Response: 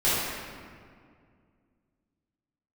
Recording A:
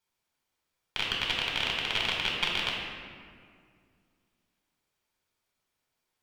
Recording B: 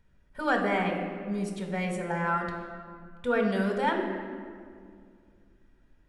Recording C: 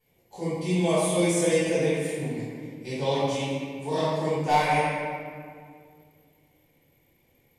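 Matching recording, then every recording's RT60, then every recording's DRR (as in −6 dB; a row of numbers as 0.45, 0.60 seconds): C; 2.1, 2.1, 2.1 seconds; −2.5, 3.0, −12.5 decibels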